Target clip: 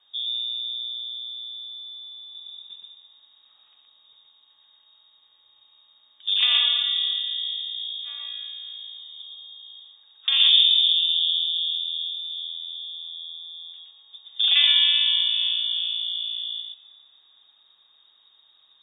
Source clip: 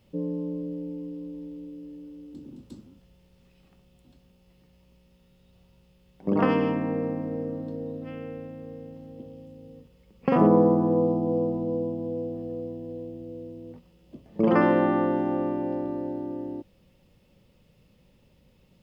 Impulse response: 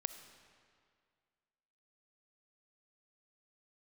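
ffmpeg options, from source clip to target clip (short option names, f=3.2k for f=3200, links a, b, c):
-filter_complex "[0:a]asplit=2[a][b];[1:a]atrim=start_sample=2205,adelay=120[c];[b][c]afir=irnorm=-1:irlink=0,volume=-1.5dB[d];[a][d]amix=inputs=2:normalize=0,lowpass=f=3.2k:t=q:w=0.5098,lowpass=f=3.2k:t=q:w=0.6013,lowpass=f=3.2k:t=q:w=0.9,lowpass=f=3.2k:t=q:w=2.563,afreqshift=-3800"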